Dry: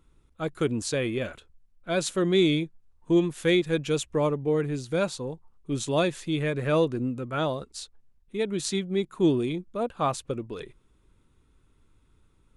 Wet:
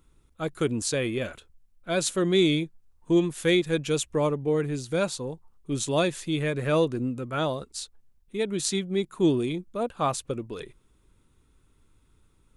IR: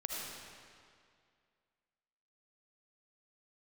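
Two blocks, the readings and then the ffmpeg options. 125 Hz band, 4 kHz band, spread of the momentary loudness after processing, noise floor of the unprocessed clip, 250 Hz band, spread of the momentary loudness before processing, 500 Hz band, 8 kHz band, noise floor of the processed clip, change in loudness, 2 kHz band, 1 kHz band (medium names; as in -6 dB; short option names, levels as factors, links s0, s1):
0.0 dB, +1.5 dB, 14 LU, -64 dBFS, 0.0 dB, 14 LU, 0.0 dB, +4.0 dB, -64 dBFS, 0.0 dB, +0.5 dB, 0.0 dB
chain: -af "highshelf=f=6400:g=7"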